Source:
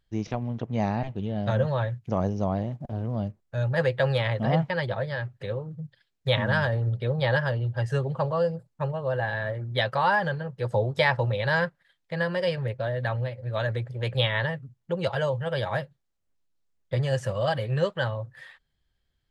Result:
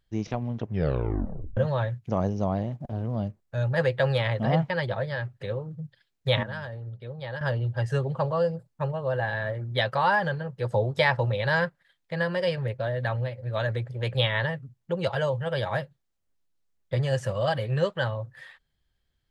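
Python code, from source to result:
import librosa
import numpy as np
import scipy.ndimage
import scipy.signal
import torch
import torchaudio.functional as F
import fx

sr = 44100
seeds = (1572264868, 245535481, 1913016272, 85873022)

y = fx.edit(x, sr, fx.tape_stop(start_s=0.59, length_s=0.98),
    fx.clip_gain(start_s=6.43, length_s=0.98, db=-11.5), tone=tone)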